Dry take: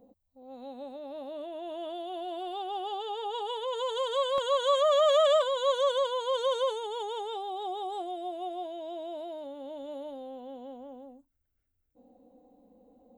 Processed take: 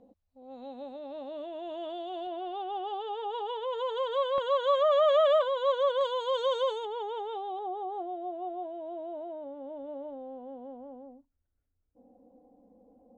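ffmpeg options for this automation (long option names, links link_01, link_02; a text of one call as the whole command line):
ffmpeg -i in.wav -af "asetnsamples=nb_out_samples=441:pad=0,asendcmd='2.27 lowpass f 2600;6.01 lowpass f 5000;6.85 lowpass f 2400;7.59 lowpass f 1300',lowpass=5200" out.wav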